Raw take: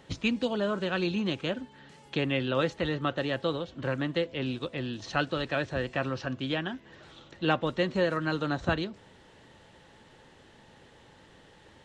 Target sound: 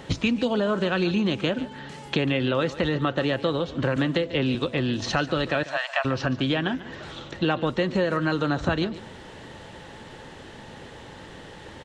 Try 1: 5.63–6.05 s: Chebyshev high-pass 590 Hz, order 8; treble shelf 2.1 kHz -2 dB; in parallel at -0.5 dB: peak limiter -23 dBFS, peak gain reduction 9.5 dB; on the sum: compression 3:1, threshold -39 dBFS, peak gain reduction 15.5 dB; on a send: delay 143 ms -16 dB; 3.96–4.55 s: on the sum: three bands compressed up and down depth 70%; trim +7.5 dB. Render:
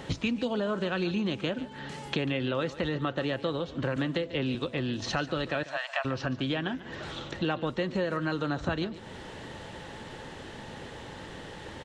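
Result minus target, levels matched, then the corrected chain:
compression: peak gain reduction +6 dB
5.63–6.05 s: Chebyshev high-pass 590 Hz, order 8; treble shelf 2.1 kHz -2 dB; in parallel at -0.5 dB: peak limiter -23 dBFS, peak gain reduction 9.5 dB; on the sum: compression 3:1, threshold -30 dBFS, peak gain reduction 9.5 dB; on a send: delay 143 ms -16 dB; 3.96–4.55 s: on the sum: three bands compressed up and down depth 70%; trim +7.5 dB

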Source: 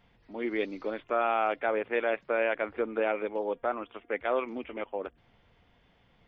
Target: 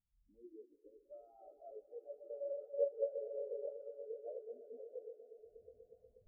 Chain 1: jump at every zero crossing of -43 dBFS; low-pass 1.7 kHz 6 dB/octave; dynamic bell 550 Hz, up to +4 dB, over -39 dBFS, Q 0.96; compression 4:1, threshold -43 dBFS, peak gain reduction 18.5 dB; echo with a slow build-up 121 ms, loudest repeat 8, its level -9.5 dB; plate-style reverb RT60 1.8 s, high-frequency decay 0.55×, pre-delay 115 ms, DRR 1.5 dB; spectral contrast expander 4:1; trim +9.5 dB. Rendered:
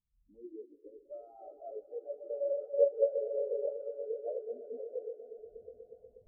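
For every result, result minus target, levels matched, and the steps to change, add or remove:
compression: peak gain reduction -8.5 dB; jump at every zero crossing: distortion +7 dB
change: compression 4:1, threshold -54.5 dBFS, peak gain reduction 27 dB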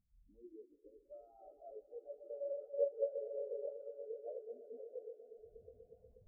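jump at every zero crossing: distortion +7 dB
change: jump at every zero crossing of -50.5 dBFS

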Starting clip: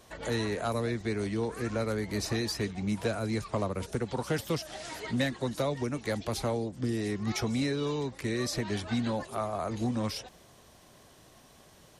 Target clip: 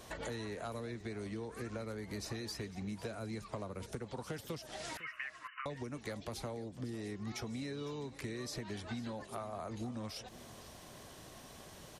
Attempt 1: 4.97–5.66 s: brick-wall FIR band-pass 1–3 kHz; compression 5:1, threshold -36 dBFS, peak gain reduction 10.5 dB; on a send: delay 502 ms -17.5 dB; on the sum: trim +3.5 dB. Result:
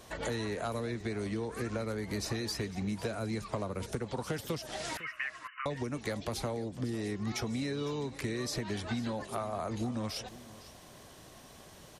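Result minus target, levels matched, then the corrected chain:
compression: peak gain reduction -7 dB
4.97–5.66 s: brick-wall FIR band-pass 1–3 kHz; compression 5:1, threshold -44.5 dBFS, peak gain reduction 17 dB; on a send: delay 502 ms -17.5 dB; on the sum: trim +3.5 dB

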